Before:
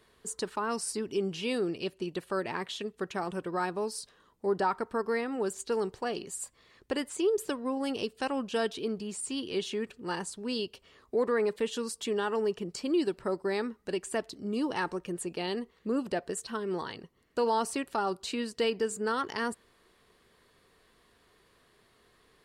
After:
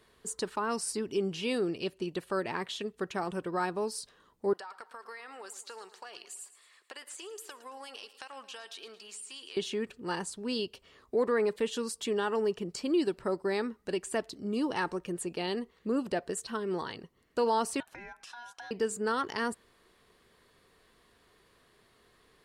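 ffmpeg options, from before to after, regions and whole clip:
-filter_complex "[0:a]asettb=1/sr,asplit=3[a][b][c];[a]atrim=end=4.534[d];[b]atrim=start=4.53:end=9.57,asetpts=PTS-STARTPTS,afade=t=in:d=0.004:c=qsin,afade=t=out:st=5.036:d=0.004:c=qsin,highpass=1k,acompressor=threshold=-40dB:ratio=16:attack=3.2:release=140:knee=1:detection=peak,aecho=1:1:111|222|333|444:0.178|0.0854|0.041|0.0197,atrim=end_sample=222264[e];[c]atrim=start=9.566[f];[d][e]acrossfade=d=0.004:c1=hsin:c2=qsin[g];[g][f]acrossfade=d=0.004:c1=qsin:c2=hsin,asettb=1/sr,asplit=3[h][i][j];[h]atrim=end=17.804[k];[i]atrim=start=17.8:end=18.71,asetpts=PTS-STARTPTS,afade=t=in:d=0.004:c=qsin,afade=t=out:st=0.906:d=0.004:c=qsin,acompressor=threshold=-40dB:ratio=8:attack=3.2:release=140:knee=1:detection=peak,highshelf=f=4.5k:g=-5,aeval=exprs='val(0)*sin(2*PI*1200*n/s)':c=same[l];[j]atrim=start=18.706[m];[k][l]acrossfade=d=0.004:c1=hsin:c2=qsin[n];[n][m]acrossfade=d=0.004:c1=qsin:c2=hsin"

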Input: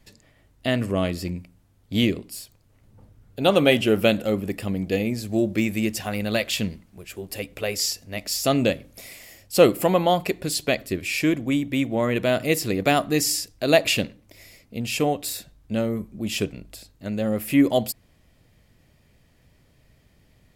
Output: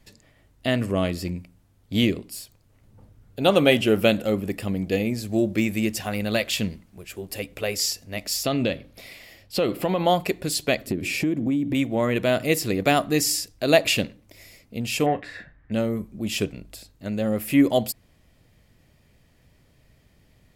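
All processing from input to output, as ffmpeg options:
-filter_complex "[0:a]asettb=1/sr,asplit=3[a][b][c];[a]atrim=end=8.434[d];[b]atrim=start=8.43:end=10.05,asetpts=PTS-STARTPTS,afade=t=in:d=0.004:c=qsin,afade=t=out:st=1.616:d=0.004:c=qsin,highshelf=f=5.4k:t=q:w=1.5:g=-7.5,acompressor=threshold=-18dB:ratio=6:attack=3.2:release=140:knee=1:detection=peak[e];[c]atrim=start=10.046[f];[d][e]acrossfade=d=0.004:c1=hsin:c2=qsin[g];[g][f]acrossfade=d=0.004:c1=qsin:c2=hsin,asettb=1/sr,asplit=3[h][i][j];[h]atrim=end=10.874[k];[i]atrim=start=10.87:end=11.75,asetpts=PTS-STARTPTS,afade=t=in:d=0.004:c=qsin,afade=t=out:st=0.876:d=0.004:c=qsin,equalizer=f=230:w=0.48:g=14,acompressor=threshold=-23dB:ratio=4:attack=3.2:release=140:knee=1:detection=peak[l];[j]atrim=start=11.746[m];[k][l]acrossfade=d=0.004:c1=hsin:c2=qsin[n];[n][m]acrossfade=d=0.004:c1=qsin:c2=hsin,asettb=1/sr,asplit=3[o][p][q];[o]atrim=end=15.064[r];[p]atrim=start=15.06:end=15.72,asetpts=PTS-STARTPTS,afade=t=in:d=0.004:c=qsin,afade=t=out:st=0.656:d=0.004:c=qsin,lowpass=f=1.8k:t=q:w=8.1,asplit=2[s][t];[t]adelay=33,volume=-13dB[u];[s][u]amix=inputs=2:normalize=0,atrim=end_sample=29106[v];[q]atrim=start=15.716[w];[r][v]acrossfade=d=0.004:c1=hsin:c2=qsin[x];[x][w]acrossfade=d=0.004:c1=qsin:c2=hsin"

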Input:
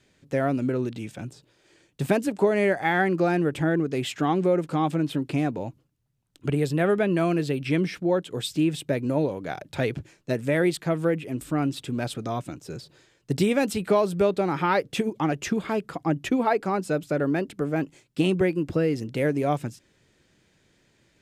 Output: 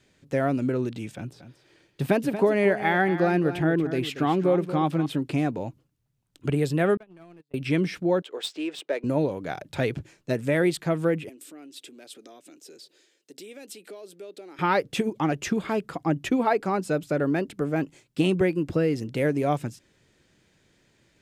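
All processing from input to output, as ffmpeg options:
-filter_complex "[0:a]asettb=1/sr,asplit=3[a][b][c];[a]atrim=end=1.154[d];[b]atrim=start=1.15:end=5.06,asetpts=PTS-STARTPTS,afade=t=in:d=0.004:c=qsin,afade=t=out:st=3.906:d=0.004:c=qsin,equalizer=f=7.5k:w=2:g=-8.5,aecho=1:1:232:0.266,atrim=end_sample=172431[e];[c]atrim=start=5.056[f];[d][e]acrossfade=d=0.004:c1=hsin:c2=qsin[g];[g][f]acrossfade=d=0.004:c1=qsin:c2=hsin,asettb=1/sr,asplit=3[h][i][j];[h]atrim=end=6.974[k];[i]atrim=start=6.97:end=7.54,asetpts=PTS-STARTPTS,afade=t=in:d=0.004:c=qsin,afade=t=out:st=0.566:d=0.004:c=qsin,agate=range=-55dB:threshold=-20dB:ratio=16:release=100:detection=peak,acompressor=threshold=-43dB:ratio=8:attack=3.2:release=140:knee=1:detection=peak,aeval=exprs='clip(val(0),-1,0.00668)':c=same[l];[j]atrim=start=7.536[m];[k][l]acrossfade=d=0.004:c1=hsin:c2=qsin[n];[n][m]acrossfade=d=0.004:c1=qsin:c2=hsin,asettb=1/sr,asplit=3[o][p][q];[o]atrim=end=8.224[r];[p]atrim=start=8.22:end=9.04,asetpts=PTS-STARTPTS,afade=t=in:d=0.004:c=qsin,afade=t=out:st=0.816:d=0.004:c=qsin,highpass=f=390:w=0.5412,highpass=f=390:w=1.3066,adynamicsmooth=sensitivity=7:basefreq=3.8k[s];[q]atrim=start=9.036[t];[r][s]acrossfade=d=0.004:c1=hsin:c2=qsin[u];[u][t]acrossfade=d=0.004:c1=qsin:c2=hsin,asettb=1/sr,asplit=3[v][w][x];[v]atrim=end=11.294[y];[w]atrim=start=11.29:end=14.59,asetpts=PTS-STARTPTS,afade=t=in:d=0.004:c=qsin,afade=t=out:st=3.296:d=0.004:c=qsin,acompressor=threshold=-37dB:ratio=3:attack=3.2:release=140:knee=1:detection=peak,highpass=f=320:w=0.5412,highpass=f=320:w=1.3066,equalizer=f=1k:w=0.83:g=-13[z];[x]atrim=start=14.586[aa];[y][z]acrossfade=d=0.004:c1=hsin:c2=qsin[ab];[ab][aa]acrossfade=d=0.004:c1=qsin:c2=hsin"

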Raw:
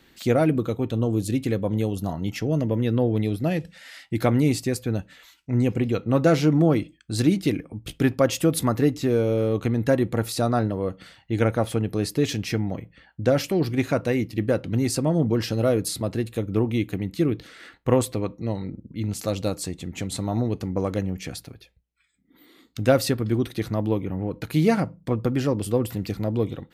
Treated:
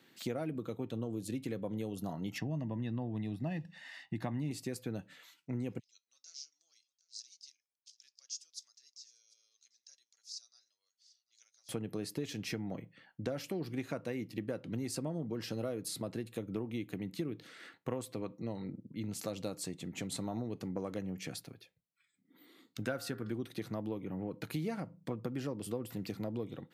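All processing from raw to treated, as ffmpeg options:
-filter_complex "[0:a]asettb=1/sr,asplit=3[a][b][c];[a]atrim=end=2.384[d];[b]atrim=start=2.38:end=4.51,asetpts=PTS-STARTPTS,afade=t=in:d=0.004:c=qsin,afade=t=out:st=2.126:d=0.004:c=qsin,aemphasis=mode=reproduction:type=50fm,aecho=1:1:1.1:0.67,atrim=end_sample=93933[e];[c]atrim=start=4.506[f];[d][e]acrossfade=d=0.004:c1=hsin:c2=qsin[g];[g][f]acrossfade=d=0.004:c1=qsin:c2=hsin,asettb=1/sr,asplit=3[h][i][j];[h]atrim=end=5.794[k];[i]atrim=start=5.79:end=11.69,asetpts=PTS-STARTPTS,afade=t=in:d=0.004:c=qsin,afade=t=out:st=5.896:d=0.004:c=qsin,asuperpass=centerf=5600:order=4:qfactor=3.2,aecho=1:1:744:0.0794,atrim=end_sample=260190[l];[j]atrim=start=11.686[m];[k][l]acrossfade=d=0.004:c1=hsin:c2=qsin[n];[n][m]acrossfade=d=0.004:c1=qsin:c2=hsin,asettb=1/sr,asplit=3[o][p][q];[o]atrim=end=22.824[r];[p]atrim=start=22.82:end=23.31,asetpts=PTS-STARTPTS,afade=t=in:d=0.004:c=qsin,afade=t=out:st=0.486:d=0.004:c=qsin,equalizer=f=1.5k:t=o:w=0.28:g=11,bandreject=f=100.2:t=h:w=4,bandreject=f=200.4:t=h:w=4,bandreject=f=300.6:t=h:w=4,bandreject=f=400.8:t=h:w=4,bandreject=f=501:t=h:w=4,bandreject=f=601.2:t=h:w=4,bandreject=f=701.4:t=h:w=4,bandreject=f=801.6:t=h:w=4,bandreject=f=901.8:t=h:w=4,bandreject=f=1.002k:t=h:w=4,bandreject=f=1.1022k:t=h:w=4,bandreject=f=1.2024k:t=h:w=4,bandreject=f=1.3026k:t=h:w=4,bandreject=f=1.4028k:t=h:w=4,bandreject=f=1.503k:t=h:w=4,bandreject=f=1.6032k:t=h:w=4,bandreject=f=1.7034k:t=h:w=4,bandreject=f=1.8036k:t=h:w=4,bandreject=f=1.9038k:t=h:w=4,bandreject=f=2.004k:t=h:w=4[s];[q]atrim=start=23.306[t];[r][s]acrossfade=d=0.004:c1=hsin:c2=qsin[u];[u][t]acrossfade=d=0.004:c1=qsin:c2=hsin,highpass=f=120:w=0.5412,highpass=f=120:w=1.3066,acompressor=threshold=-27dB:ratio=5,volume=-7.5dB"

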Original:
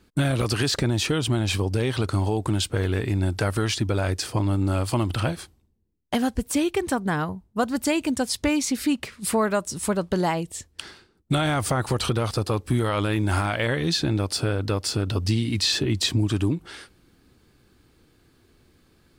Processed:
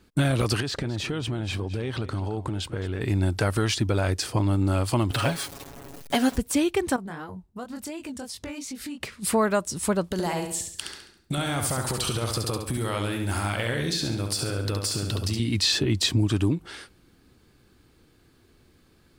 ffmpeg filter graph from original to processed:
-filter_complex "[0:a]asettb=1/sr,asplit=3[a][b][c];[a]atrim=end=0.604[d];[b]atrim=start=0.6:end=3.01,asetpts=PTS-STARTPTS,afade=t=in:d=0.004:c=qsin,afade=t=out:st=2.406:d=0.004:c=qsin,highshelf=f=5.5k:g=-11,acompressor=threshold=-27dB:ratio=2.5:attack=3.2:release=140:knee=1:detection=peak,aecho=1:1:216:0.168,atrim=end_sample=106281[e];[c]atrim=start=3.006[f];[d][e]acrossfade=d=0.004:c1=hsin:c2=qsin[g];[g][f]acrossfade=d=0.004:c1=qsin:c2=hsin,asettb=1/sr,asplit=3[h][i][j];[h]atrim=end=5.114[k];[i]atrim=start=5.11:end=6.38,asetpts=PTS-STARTPTS,afade=t=in:d=0.004:c=qsin,afade=t=out:st=1.266:d=0.004:c=qsin,aeval=exprs='val(0)+0.5*0.0211*sgn(val(0))':c=same,lowshelf=f=190:g=-9.5,aecho=1:1:7.2:0.95,atrim=end_sample=56007[l];[j]atrim=start=6.376[m];[k][l]acrossfade=d=0.004:c1=hsin:c2=qsin[n];[n][m]acrossfade=d=0.004:c1=qsin:c2=hsin,asettb=1/sr,asplit=3[o][p][q];[o]atrim=end=6.964[r];[p]atrim=start=6.96:end=9.01,asetpts=PTS-STARTPTS,afade=t=in:d=0.004:c=qsin,afade=t=out:st=2.046:d=0.004:c=qsin,flanger=delay=19.5:depth=5.1:speed=2.8,acompressor=threshold=-34dB:ratio=4:attack=3.2:release=140:knee=1:detection=peak[s];[q]atrim=start=9.006[t];[r][s]acrossfade=d=0.004:c1=hsin:c2=qsin[u];[u][t]acrossfade=d=0.004:c1=qsin:c2=hsin,asettb=1/sr,asplit=3[v][w][x];[v]atrim=end=10.044[y];[w]atrim=start=10.04:end=15.4,asetpts=PTS-STARTPTS,afade=t=in:d=0.004:c=qsin,afade=t=out:st=5.356:d=0.004:c=qsin,aemphasis=mode=production:type=cd,acompressor=threshold=-24dB:ratio=6:attack=3.2:release=140:knee=1:detection=peak,aecho=1:1:69|138|207|276|345:0.531|0.234|0.103|0.0452|0.0199,atrim=end_sample=236376[z];[x]atrim=start=15.396[aa];[y][z]acrossfade=d=0.004:c1=hsin:c2=qsin[ab];[ab][aa]acrossfade=d=0.004:c1=qsin:c2=hsin"

